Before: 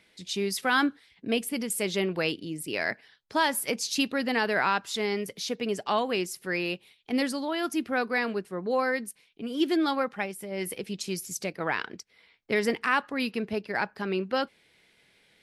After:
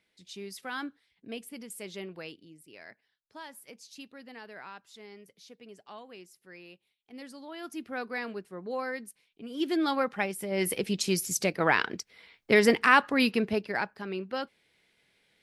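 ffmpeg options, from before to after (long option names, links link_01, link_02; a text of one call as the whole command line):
ffmpeg -i in.wav -af "volume=12.5dB,afade=type=out:start_time=2.03:duration=0.62:silence=0.421697,afade=type=in:start_time=7.13:duration=0.93:silence=0.237137,afade=type=in:start_time=9.46:duration=1.33:silence=0.237137,afade=type=out:start_time=13.26:duration=0.7:silence=0.281838" out.wav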